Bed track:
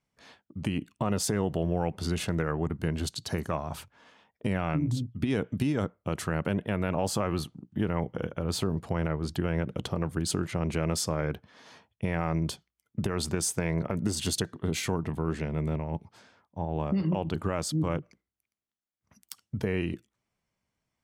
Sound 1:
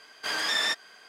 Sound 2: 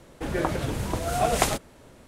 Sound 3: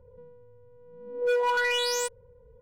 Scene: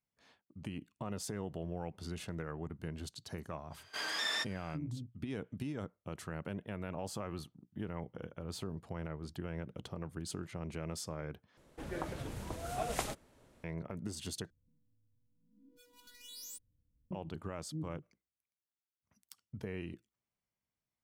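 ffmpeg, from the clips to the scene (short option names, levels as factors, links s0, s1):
-filter_complex "[0:a]volume=0.237[s0];[3:a]firequalizer=gain_entry='entry(180,0);entry(300,12);entry(420,-28);entry(2000,-19);entry(3400,-4);entry(13000,12)':delay=0.05:min_phase=1[s1];[s0]asplit=3[s2][s3][s4];[s2]atrim=end=11.574[s5];[2:a]atrim=end=2.07,asetpts=PTS-STARTPTS,volume=0.211[s6];[s3]atrim=start=13.636:end=14.504[s7];[s1]atrim=end=2.61,asetpts=PTS-STARTPTS,volume=0.133[s8];[s4]atrim=start=17.106[s9];[1:a]atrim=end=1.08,asetpts=PTS-STARTPTS,volume=0.376,afade=t=in:d=0.05,afade=t=out:st=1.03:d=0.05,adelay=3700[s10];[s5][s6]acrossfade=d=0.004:c1=hsin:c2=hsin[s11];[s11][s7]acrossfade=d=0.004:c1=hsin:c2=hsin[s12];[s12][s8]acrossfade=d=0.004:c1=hsin:c2=hsin[s13];[s13][s9]acrossfade=d=0.004:c1=hsin:c2=hsin[s14];[s14][s10]amix=inputs=2:normalize=0"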